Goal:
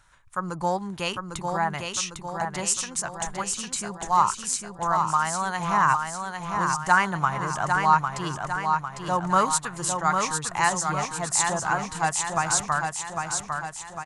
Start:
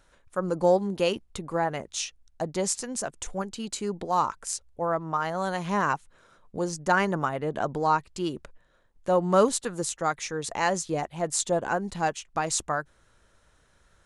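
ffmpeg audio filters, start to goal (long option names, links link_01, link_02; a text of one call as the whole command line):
ffmpeg -i in.wav -filter_complex "[0:a]equalizer=frequency=125:width_type=o:width=1:gain=7,equalizer=frequency=250:width_type=o:width=1:gain=-7,equalizer=frequency=500:width_type=o:width=1:gain=-11,equalizer=frequency=1000:width_type=o:width=1:gain=8,equalizer=frequency=2000:width_type=o:width=1:gain=3,equalizer=frequency=8000:width_type=o:width=1:gain=5,asplit=2[link_01][link_02];[link_02]aecho=0:1:802|1604|2406|3208|4010|4812|5614:0.562|0.298|0.158|0.0837|0.0444|0.0235|0.0125[link_03];[link_01][link_03]amix=inputs=2:normalize=0" out.wav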